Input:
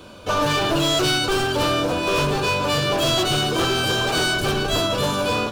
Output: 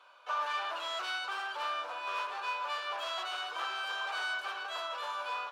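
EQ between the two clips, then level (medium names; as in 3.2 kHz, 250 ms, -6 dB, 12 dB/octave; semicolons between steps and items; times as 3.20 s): high-pass 950 Hz 24 dB/octave; tilt EQ -3 dB/octave; treble shelf 4 kHz -12 dB; -7.0 dB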